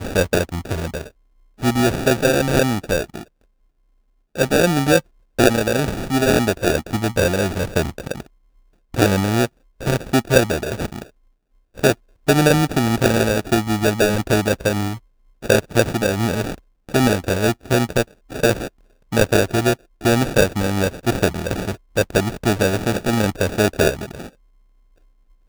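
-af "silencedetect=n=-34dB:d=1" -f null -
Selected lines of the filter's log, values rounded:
silence_start: 3.23
silence_end: 4.36 | silence_duration: 1.12
silence_start: 24.28
silence_end: 25.48 | silence_duration: 1.20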